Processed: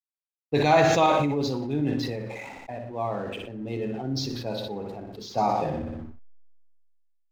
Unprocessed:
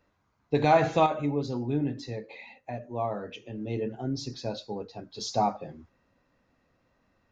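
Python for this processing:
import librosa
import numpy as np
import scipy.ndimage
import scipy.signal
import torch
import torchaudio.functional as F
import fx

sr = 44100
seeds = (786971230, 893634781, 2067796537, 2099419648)

y = fx.env_lowpass(x, sr, base_hz=1100.0, full_db=-21.5)
y = fx.high_shelf(y, sr, hz=2900.0, db=8.0)
y = fx.hum_notches(y, sr, base_hz=60, count=4)
y = fx.backlash(y, sr, play_db=-49.5)
y = fx.echo_feedback(y, sr, ms=60, feedback_pct=45, wet_db=-9.5)
y = fx.sustainer(y, sr, db_per_s=26.0)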